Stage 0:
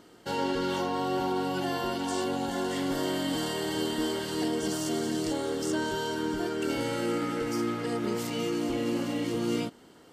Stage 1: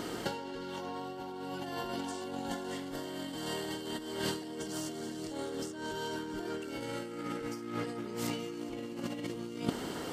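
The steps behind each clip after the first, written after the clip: in parallel at -3 dB: limiter -27 dBFS, peak gain reduction 9 dB; on the sum: negative-ratio compressor -35 dBFS, ratio -0.5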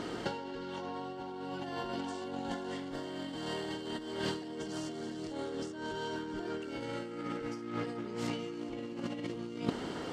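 air absorption 70 m; Doppler distortion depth 0.16 ms

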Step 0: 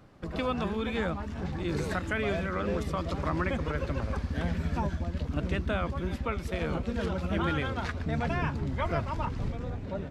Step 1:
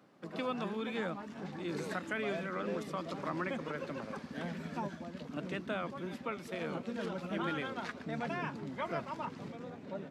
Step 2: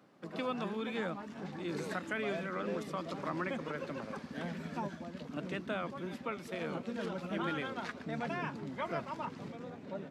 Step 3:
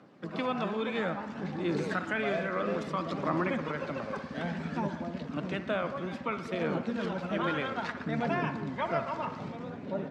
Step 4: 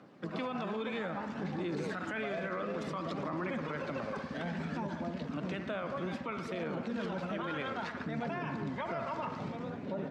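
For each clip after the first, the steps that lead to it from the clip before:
HPF 170 Hz 24 dB/oct; gain -5.5 dB
nothing audible
phaser 0.6 Hz, delay 2 ms, feedback 27%; air absorption 73 m; band-limited delay 60 ms, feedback 68%, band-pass 1100 Hz, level -10 dB; gain +5.5 dB
limiter -28.5 dBFS, peak gain reduction 11 dB

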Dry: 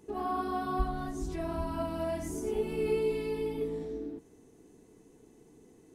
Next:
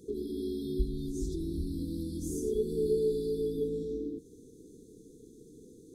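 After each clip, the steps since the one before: FFT band-reject 510–3300 Hz; in parallel at -2.5 dB: compressor, threshold -43 dBFS, peak gain reduction 18 dB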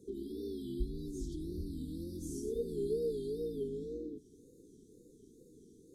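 wow and flutter 130 cents; gain -6 dB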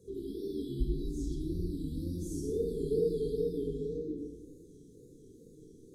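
shoebox room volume 3200 m³, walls furnished, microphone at 5.6 m; gain -2 dB

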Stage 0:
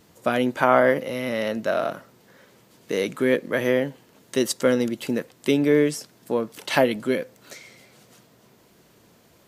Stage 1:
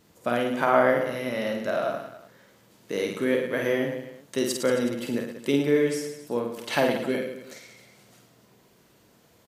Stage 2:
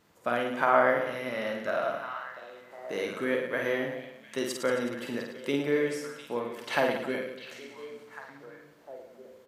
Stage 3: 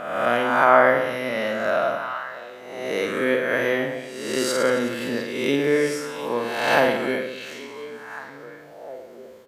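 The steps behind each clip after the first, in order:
reverse bouncing-ball echo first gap 50 ms, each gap 1.2×, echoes 5; gain -5 dB
bell 1300 Hz +8 dB 2.5 oct; delay with a stepping band-pass 0.701 s, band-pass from 3400 Hz, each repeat -1.4 oct, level -9.5 dB; gain -8 dB
spectral swells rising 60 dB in 1.04 s; gain +5.5 dB

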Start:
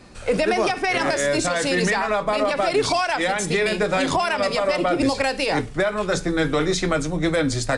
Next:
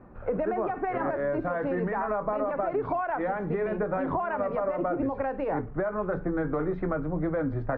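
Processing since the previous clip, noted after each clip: LPF 1400 Hz 24 dB/oct; compressor, threshold -21 dBFS, peak gain reduction 6 dB; gain -3.5 dB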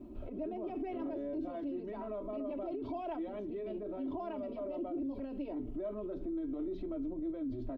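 EQ curve 130 Hz 0 dB, 280 Hz +9 dB, 1700 Hz -17 dB, 3100 Hz +11 dB; limiter -31 dBFS, peak gain reduction 18 dB; comb 3.1 ms, depth 89%; gain -5 dB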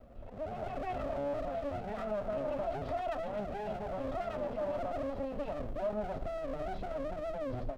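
minimum comb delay 1.5 ms; AGC gain up to 9.5 dB; gain -4 dB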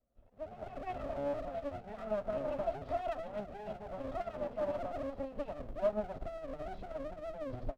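upward expander 2.5:1, over -52 dBFS; gain +4.5 dB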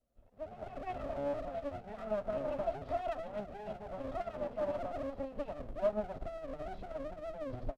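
downsampling 32000 Hz

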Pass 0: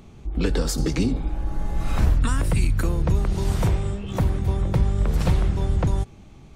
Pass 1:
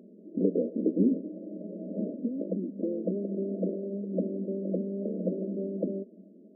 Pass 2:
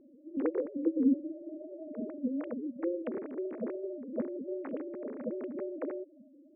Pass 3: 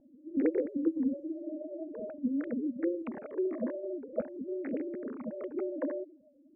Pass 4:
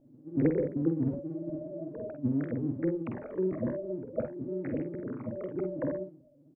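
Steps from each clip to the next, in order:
FFT band-pass 180–660 Hz
sine-wave speech; gain -4 dB
low-pass opened by the level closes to 840 Hz, open at -30.5 dBFS; phaser stages 12, 0.47 Hz, lowest notch 130–1100 Hz; gain +5 dB
octaver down 1 oct, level -3 dB; on a send: early reflections 48 ms -6.5 dB, 60 ms -14 dB

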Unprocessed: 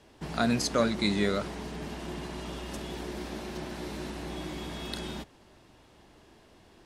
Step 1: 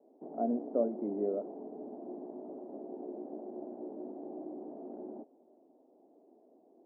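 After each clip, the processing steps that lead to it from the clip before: elliptic band-pass 250–720 Hz, stop band 70 dB; gain -2 dB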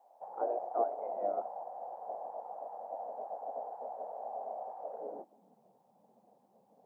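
spectral gate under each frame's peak -10 dB weak; high-pass sweep 730 Hz -> 110 Hz, 4.79–5.69; gain +7.5 dB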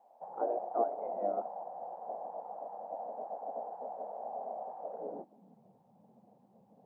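tone controls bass +13 dB, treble -6 dB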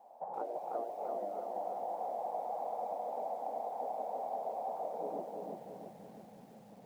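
compressor 16:1, threshold -42 dBFS, peak gain reduction 17.5 dB; lo-fi delay 0.336 s, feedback 55%, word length 12-bit, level -3 dB; gain +5.5 dB

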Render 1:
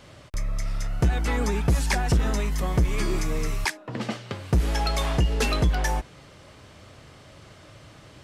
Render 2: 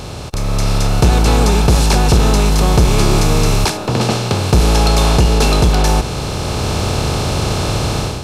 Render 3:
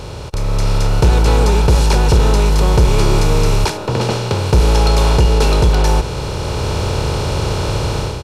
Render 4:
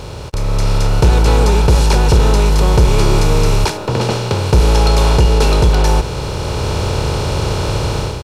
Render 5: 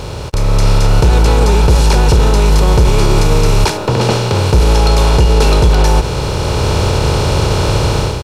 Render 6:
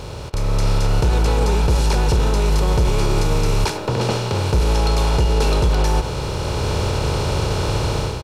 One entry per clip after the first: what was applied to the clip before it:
per-bin compression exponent 0.4; bell 1900 Hz -14.5 dB 0.45 oct; AGC gain up to 11.5 dB
high shelf 5000 Hz -6 dB; comb 2.1 ms, depth 37%; gain -1.5 dB
crossover distortion -47.5 dBFS; gain +1 dB
maximiser +5.5 dB; gain -1 dB
speakerphone echo 0.1 s, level -11 dB; gain -7.5 dB

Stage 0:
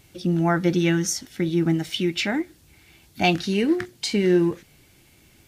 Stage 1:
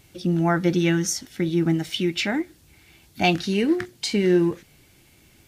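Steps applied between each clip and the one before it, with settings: nothing audible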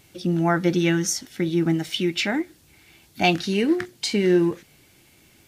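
low shelf 93 Hz -8.5 dB; gain +1 dB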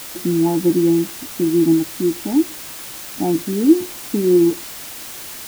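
vocal tract filter u; in parallel at -5 dB: requantised 6-bit, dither triangular; on the sum: gain +8 dB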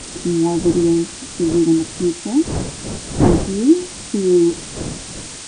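nonlinear frequency compression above 1800 Hz 1.5:1; wind noise 310 Hz -26 dBFS

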